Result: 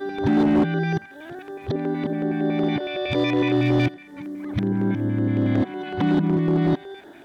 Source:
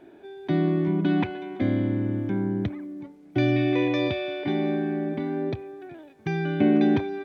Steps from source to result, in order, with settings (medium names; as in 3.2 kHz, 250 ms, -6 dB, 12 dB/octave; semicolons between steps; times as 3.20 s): reverse the whole clip; band-passed feedback delay 84 ms, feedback 68%, band-pass 1.6 kHz, level -16 dB; LFO notch square 5.4 Hz 440–2400 Hz; hard clipper -18.5 dBFS, distortion -16 dB; tape noise reduction on one side only encoder only; trim +4.5 dB